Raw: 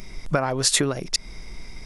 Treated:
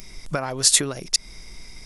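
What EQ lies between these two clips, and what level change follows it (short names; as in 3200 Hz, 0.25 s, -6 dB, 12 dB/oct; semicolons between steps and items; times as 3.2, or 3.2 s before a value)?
high shelf 3700 Hz +11.5 dB; -4.5 dB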